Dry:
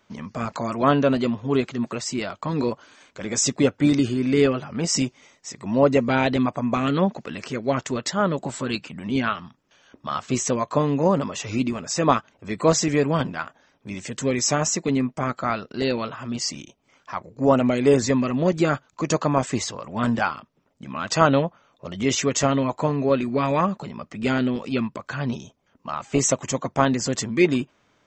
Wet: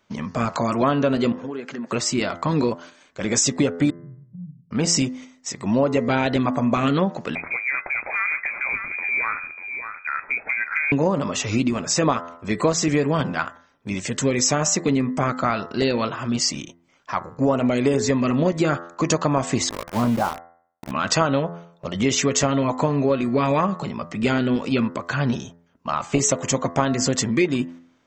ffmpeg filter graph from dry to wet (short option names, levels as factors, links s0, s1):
-filter_complex "[0:a]asettb=1/sr,asplit=3[s0][s1][s2];[s0]atrim=end=1.324[s3];[s1]atrim=start=1.32:end=1.89,asetpts=PTS-STARTPTS,afade=t=in:d=0.004:c=qsin,afade=t=out:st=0.566:d=0.004:c=qsin,highpass=f=170:w=0.5412,highpass=f=170:w=1.3066,equalizer=f=510:t=q:w=4:g=5,equalizer=f=1600:t=q:w=4:g=9,equalizer=f=3700:t=q:w=4:g=-7,lowpass=f=7300:w=0.5412,lowpass=f=7300:w=1.3066,acompressor=threshold=0.02:ratio=6:attack=3.2:release=140:knee=1:detection=peak[s4];[s2]atrim=start=1.886[s5];[s3][s4]acrossfade=d=0.004:c1=hsin:c2=qsin[s6];[s6][s5]acrossfade=d=0.004:c1=qsin:c2=hsin,asettb=1/sr,asplit=3[s7][s8][s9];[s7]atrim=end=3.904[s10];[s8]atrim=start=3.9:end=4.71,asetpts=PTS-STARTPTS,afade=t=in:d=0.004:c=qsin,afade=t=out:st=0.806:d=0.004:c=qsin,aeval=exprs='val(0)*sin(2*PI*250*n/s)':c=same,asuperpass=centerf=170:order=8:qfactor=1.9,acompressor=threshold=0.00447:ratio=2.5:attack=3.2:release=140:knee=1:detection=peak[s11];[s9]atrim=start=4.706[s12];[s10][s11]acrossfade=d=0.004:c1=hsin:c2=qsin[s13];[s13][s12]acrossfade=d=0.004:c1=qsin:c2=hsin,asettb=1/sr,asplit=3[s14][s15][s16];[s14]atrim=end=7.354[s17];[s15]atrim=start=7.35:end=10.92,asetpts=PTS-STARTPTS,afade=t=in:d=0.004:c=qsin,afade=t=out:st=3.566:d=0.004:c=qsin,lowpass=f=2200:t=q:w=0.5098,lowpass=f=2200:t=q:w=0.6013,lowpass=f=2200:t=q:w=0.9,lowpass=f=2200:t=q:w=2.563,afreqshift=-2600,acompressor=threshold=0.0355:ratio=2.5:attack=3.2:release=140:knee=1:detection=peak,aecho=1:1:592:0.398,atrim=end_sample=157437[s18];[s16]atrim=start=10.916[s19];[s17][s18]acrossfade=d=0.004:c1=hsin:c2=qsin[s20];[s20][s19]acrossfade=d=0.004:c1=qsin:c2=hsin,asettb=1/sr,asplit=3[s21][s22][s23];[s21]atrim=end=19.694[s24];[s22]atrim=start=19.69:end=20.91,asetpts=PTS-STARTPTS,afade=t=in:d=0.004:c=qsin,afade=t=out:st=1.216:d=0.004:c=qsin,lowpass=f=1100:w=0.5412,lowpass=f=1100:w=1.3066,aeval=exprs='val(0)*gte(abs(val(0)),0.0266)':c=same[s25];[s23]atrim=start=20.906[s26];[s24][s25]acrossfade=d=0.004:c1=hsin:c2=qsin[s27];[s27][s26]acrossfade=d=0.004:c1=qsin:c2=hsin,agate=range=0.398:threshold=0.00631:ratio=16:detection=peak,bandreject=f=85.15:t=h:w=4,bandreject=f=170.3:t=h:w=4,bandreject=f=255.45:t=h:w=4,bandreject=f=340.6:t=h:w=4,bandreject=f=425.75:t=h:w=4,bandreject=f=510.9:t=h:w=4,bandreject=f=596.05:t=h:w=4,bandreject=f=681.2:t=h:w=4,bandreject=f=766.35:t=h:w=4,bandreject=f=851.5:t=h:w=4,bandreject=f=936.65:t=h:w=4,bandreject=f=1021.8:t=h:w=4,bandreject=f=1106.95:t=h:w=4,bandreject=f=1192.1:t=h:w=4,bandreject=f=1277.25:t=h:w=4,bandreject=f=1362.4:t=h:w=4,bandreject=f=1447.55:t=h:w=4,bandreject=f=1532.7:t=h:w=4,bandreject=f=1617.85:t=h:w=4,bandreject=f=1703:t=h:w=4,bandreject=f=1788.15:t=h:w=4,bandreject=f=1873.3:t=h:w=4,bandreject=f=1958.45:t=h:w=4,bandreject=f=2043.6:t=h:w=4,acompressor=threshold=0.0794:ratio=6,volume=2"